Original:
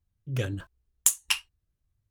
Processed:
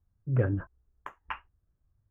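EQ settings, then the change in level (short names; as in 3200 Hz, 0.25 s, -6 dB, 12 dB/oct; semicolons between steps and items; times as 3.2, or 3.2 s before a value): inverse Chebyshev low-pass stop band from 4000 Hz, stop band 50 dB; +4.0 dB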